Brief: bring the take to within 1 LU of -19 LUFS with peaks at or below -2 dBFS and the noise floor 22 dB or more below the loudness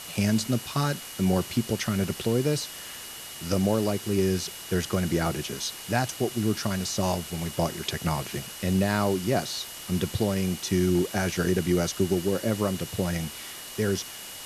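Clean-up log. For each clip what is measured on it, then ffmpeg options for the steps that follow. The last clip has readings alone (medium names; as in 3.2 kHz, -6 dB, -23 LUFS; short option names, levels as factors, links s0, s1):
steady tone 2.9 kHz; tone level -46 dBFS; noise floor -41 dBFS; noise floor target -50 dBFS; loudness -27.5 LUFS; peak level -9.0 dBFS; loudness target -19.0 LUFS
-> -af "bandreject=f=2900:w=30"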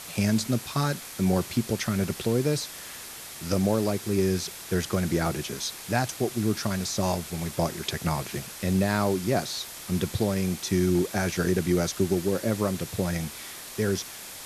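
steady tone not found; noise floor -41 dBFS; noise floor target -50 dBFS
-> -af "afftdn=nr=9:nf=-41"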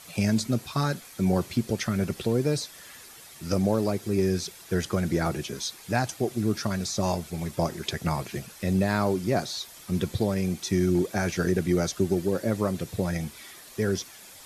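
noise floor -48 dBFS; noise floor target -50 dBFS
-> -af "afftdn=nr=6:nf=-48"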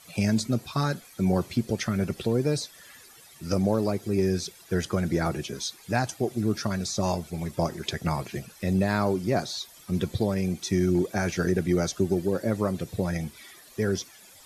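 noise floor -52 dBFS; loudness -27.5 LUFS; peak level -9.5 dBFS; loudness target -19.0 LUFS
-> -af "volume=2.66,alimiter=limit=0.794:level=0:latency=1"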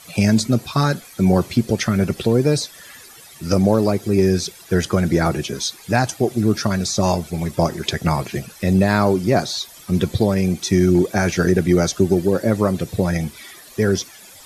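loudness -19.0 LUFS; peak level -2.0 dBFS; noise floor -43 dBFS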